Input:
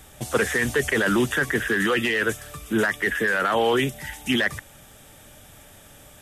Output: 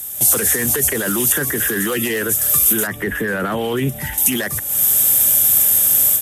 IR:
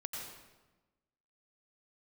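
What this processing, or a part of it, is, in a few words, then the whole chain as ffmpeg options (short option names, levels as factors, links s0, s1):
FM broadcast chain: -filter_complex "[0:a]highpass=67,dynaudnorm=f=150:g=3:m=5.96,acrossover=split=430|1300[s0][s1][s2];[s0]acompressor=threshold=0.126:ratio=4[s3];[s1]acompressor=threshold=0.0501:ratio=4[s4];[s2]acompressor=threshold=0.0316:ratio=4[s5];[s3][s4][s5]amix=inputs=3:normalize=0,aemphasis=mode=production:type=50fm,alimiter=limit=0.224:level=0:latency=1:release=36,asoftclip=type=hard:threshold=0.188,lowpass=f=15000:w=0.5412,lowpass=f=15000:w=1.3066,aemphasis=mode=production:type=50fm,asettb=1/sr,asplit=3[s6][s7][s8];[s6]atrim=end=2.874[s9];[s7]atrim=start=2.87:end=4.18,asetpts=PTS-STARTPTS,afade=t=in:d=0.004:c=qsin,afade=t=out:st=1.306:d=0.004:c=qsin,bass=f=250:g=6,treble=f=4000:g=-14[s10];[s8]atrim=start=4.176[s11];[s9][s10]acrossfade=d=0.004:c1=hsin:c2=qsin[s12];[s12][s11]acrossfade=d=0.004:c1=qsin:c2=hsin"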